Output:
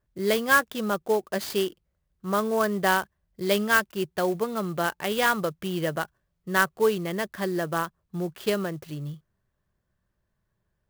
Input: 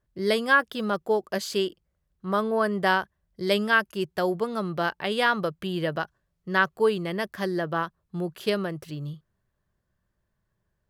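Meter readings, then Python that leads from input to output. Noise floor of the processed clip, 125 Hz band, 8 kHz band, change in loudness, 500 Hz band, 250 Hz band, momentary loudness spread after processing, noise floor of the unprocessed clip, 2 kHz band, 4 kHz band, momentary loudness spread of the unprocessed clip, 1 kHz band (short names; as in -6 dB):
-78 dBFS, 0.0 dB, +8.5 dB, 0.0 dB, 0.0 dB, 0.0 dB, 12 LU, -78 dBFS, -0.5 dB, -1.0 dB, 12 LU, 0.0 dB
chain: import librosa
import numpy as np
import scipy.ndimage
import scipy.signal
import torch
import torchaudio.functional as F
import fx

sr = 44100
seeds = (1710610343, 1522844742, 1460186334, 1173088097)

y = fx.clock_jitter(x, sr, seeds[0], jitter_ms=0.029)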